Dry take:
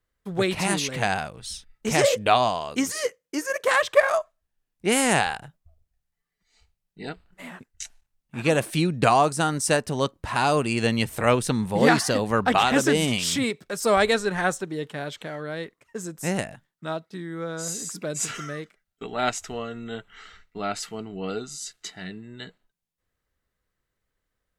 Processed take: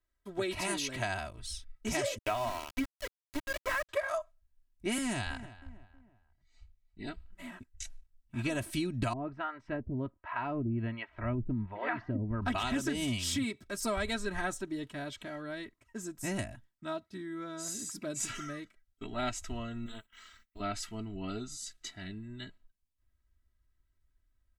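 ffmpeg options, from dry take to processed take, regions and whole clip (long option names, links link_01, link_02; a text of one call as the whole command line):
ffmpeg -i in.wav -filter_complex "[0:a]asettb=1/sr,asplit=3[link_01][link_02][link_03];[link_01]atrim=end=2.184[link_04];[link_02]atrim=start=2.18:end=3.89,asetpts=PTS-STARTPTS,afade=type=in:duration=0.004:curve=qsin,afade=type=out:start_time=1.706:duration=0.004:curve=qsin,lowpass=frequency=2800:width=0.5412,lowpass=frequency=2800:width=1.3066,bandreject=frequency=50:width_type=h:width=6,bandreject=frequency=100:width_type=h:width=6,bandreject=frequency=150:width_type=h:width=6,bandreject=frequency=200:width_type=h:width=6,bandreject=frequency=250:width_type=h:width=6,bandreject=frequency=300:width_type=h:width=6,bandreject=frequency=350:width_type=h:width=6,bandreject=frequency=400:width_type=h:width=6,bandreject=frequency=450:width_type=h:width=6,aeval=exprs='val(0)*gte(abs(val(0)),0.0501)':channel_layout=same[link_05];[link_03]atrim=start=3.886[link_06];[link_04][link_05]acrossfade=duration=0.004:curve1=hsin:curve2=qsin[link_07];[link_07][link_06]acrossfade=duration=0.004:curve1=qsin:curve2=hsin,asettb=1/sr,asplit=3[link_08][link_09][link_10];[link_08]atrim=end=4.984[link_11];[link_09]atrim=start=4.98:end=7.07,asetpts=PTS-STARTPTS,afade=type=in:duration=0.004:curve=qsin,afade=type=out:start_time=2.086:duration=0.004:curve=qsin,highshelf=frequency=8100:gain=-9.5,acrossover=split=350|3000[link_12][link_13][link_14];[link_13]acompressor=threshold=-26dB:ratio=3:attack=3.2:release=140:knee=2.83:detection=peak[link_15];[link_12][link_15][link_14]amix=inputs=3:normalize=0,asplit=2[link_16][link_17];[link_17]adelay=318,lowpass=frequency=1900:poles=1,volume=-17dB,asplit=2[link_18][link_19];[link_19]adelay=318,lowpass=frequency=1900:poles=1,volume=0.4,asplit=2[link_20][link_21];[link_21]adelay=318,lowpass=frequency=1900:poles=1,volume=0.4[link_22];[link_16][link_18][link_20][link_22]amix=inputs=4:normalize=0,atrim=end_sample=92169[link_23];[link_10]atrim=start=7.066[link_24];[link_11][link_23]acrossfade=duration=0.004:curve1=hsin:curve2=qsin[link_25];[link_25][link_24]acrossfade=duration=0.004:curve1=qsin:curve2=hsin,asettb=1/sr,asplit=3[link_26][link_27][link_28];[link_26]atrim=end=9.134[link_29];[link_27]atrim=start=9.13:end=12.42,asetpts=PTS-STARTPTS,afade=type=in:duration=0.004:curve=qsin,afade=type=out:start_time=3.286:duration=0.004:curve=qsin,lowpass=frequency=2200:width=0.5412,lowpass=frequency=2200:width=1.3066,acrossover=split=520[link_30][link_31];[link_30]aeval=exprs='val(0)*(1-1/2+1/2*cos(2*PI*1.3*n/s))':channel_layout=same[link_32];[link_31]aeval=exprs='val(0)*(1-1/2-1/2*cos(2*PI*1.3*n/s))':channel_layout=same[link_33];[link_32][link_33]amix=inputs=2:normalize=0[link_34];[link_28]atrim=start=12.416[link_35];[link_29][link_34]acrossfade=duration=0.004:curve1=hsin:curve2=qsin[link_36];[link_36][link_35]acrossfade=duration=0.004:curve1=qsin:curve2=hsin,asettb=1/sr,asplit=3[link_37][link_38][link_39];[link_37]atrim=end=19.864[link_40];[link_38]atrim=start=19.86:end=20.6,asetpts=PTS-STARTPTS,afade=type=in:duration=0.004:curve=qsin,afade=type=out:start_time=0.736:duration=0.004:curve=qsin,agate=range=-11dB:threshold=-54dB:ratio=16:release=100:detection=peak,aemphasis=mode=production:type=bsi,tremolo=f=220:d=0.857[link_41];[link_39]atrim=start=20.596[link_42];[link_40][link_41]acrossfade=duration=0.004:curve1=hsin:curve2=qsin[link_43];[link_43][link_42]acrossfade=duration=0.004:curve1=qsin:curve2=hsin,aecho=1:1:3.1:0.82,asubboost=boost=5:cutoff=180,acompressor=threshold=-20dB:ratio=6,volume=-9dB" out.wav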